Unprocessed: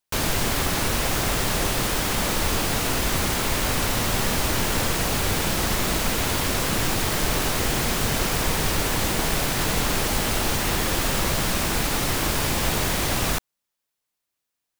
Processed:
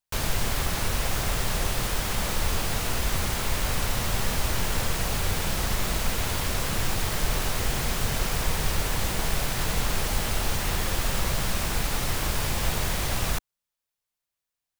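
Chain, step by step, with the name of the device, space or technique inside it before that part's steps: low shelf boost with a cut just above (low shelf 83 Hz +7.5 dB; bell 290 Hz -5.5 dB 0.77 oct); gain -5 dB

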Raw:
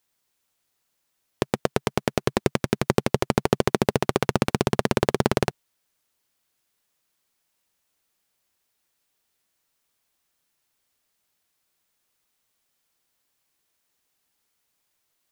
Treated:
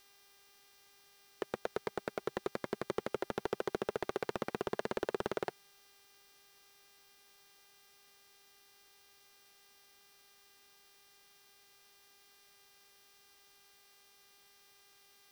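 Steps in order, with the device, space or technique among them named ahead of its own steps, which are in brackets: aircraft radio (BPF 390–2400 Hz; hard clip -18.5 dBFS, distortion -6 dB; buzz 400 Hz, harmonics 15, -61 dBFS 0 dB/oct; white noise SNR 23 dB); gain -6.5 dB

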